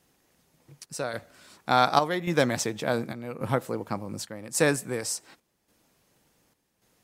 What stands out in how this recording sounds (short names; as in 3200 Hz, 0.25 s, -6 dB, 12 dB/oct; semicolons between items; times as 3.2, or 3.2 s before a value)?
chopped level 0.88 Hz, depth 60%, duty 75%; MP3